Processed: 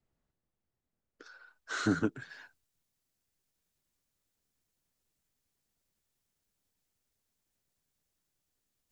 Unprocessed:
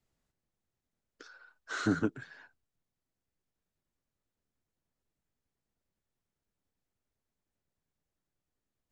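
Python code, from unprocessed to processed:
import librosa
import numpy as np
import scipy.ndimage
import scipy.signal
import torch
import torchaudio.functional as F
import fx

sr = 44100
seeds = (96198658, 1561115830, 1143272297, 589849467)

y = fx.high_shelf(x, sr, hz=2700.0, db=fx.steps((0.0, -10.0), (1.25, 3.0), (2.29, 11.0)))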